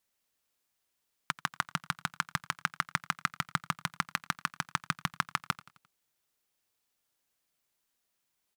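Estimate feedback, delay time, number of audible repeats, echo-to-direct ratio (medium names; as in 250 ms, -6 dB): 50%, 87 ms, 3, -18.5 dB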